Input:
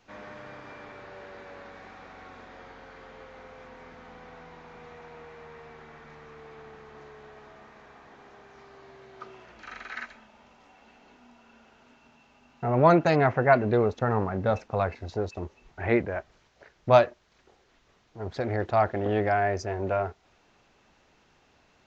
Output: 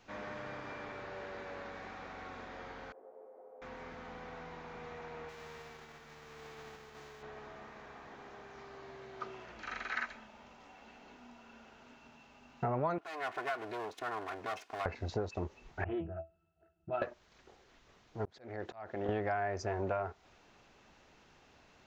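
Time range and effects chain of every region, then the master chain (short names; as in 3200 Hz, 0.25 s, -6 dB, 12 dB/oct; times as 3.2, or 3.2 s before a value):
2.92–3.62 Butterworth band-pass 520 Hz, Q 1.4 + detuned doubles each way 31 cents
5.28–7.21 spectral whitening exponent 0.6 + expander -44 dBFS
12.98–14.86 minimum comb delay 2.8 ms + compressor 4:1, threshold -29 dBFS + HPF 1200 Hz 6 dB/oct
15.84–17.02 octave resonator E, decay 0.19 s + Doppler distortion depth 0.27 ms
18.25–19.09 HPF 200 Hz 6 dB/oct + compressor 4:1, threshold -28 dBFS + auto swell 0.463 s
whole clip: dynamic EQ 1100 Hz, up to +5 dB, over -40 dBFS, Q 1; compressor 10:1, threshold -31 dBFS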